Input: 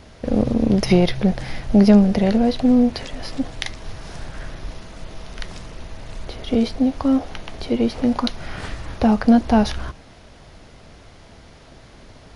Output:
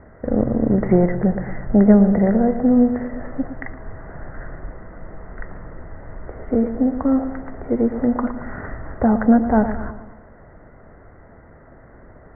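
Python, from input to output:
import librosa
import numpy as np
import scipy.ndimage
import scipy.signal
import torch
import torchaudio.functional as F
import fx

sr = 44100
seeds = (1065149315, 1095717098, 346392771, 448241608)

y = scipy.signal.sosfilt(scipy.signal.cheby1(6, 3, 2000.0, 'lowpass', fs=sr, output='sos'), x)
y = fx.echo_bbd(y, sr, ms=113, stages=1024, feedback_pct=51, wet_db=-10.5)
y = y * 10.0 ** (1.5 / 20.0)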